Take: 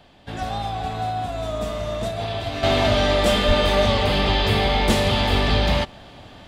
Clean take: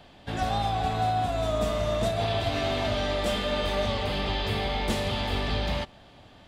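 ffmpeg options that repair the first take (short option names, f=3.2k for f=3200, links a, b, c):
-filter_complex "[0:a]asplit=3[a][b][c];[a]afade=t=out:st=3.47:d=0.02[d];[b]highpass=f=140:w=0.5412,highpass=f=140:w=1.3066,afade=t=in:st=3.47:d=0.02,afade=t=out:st=3.59:d=0.02[e];[c]afade=t=in:st=3.59:d=0.02[f];[d][e][f]amix=inputs=3:normalize=0,asetnsamples=n=441:p=0,asendcmd='2.63 volume volume -9dB',volume=0dB"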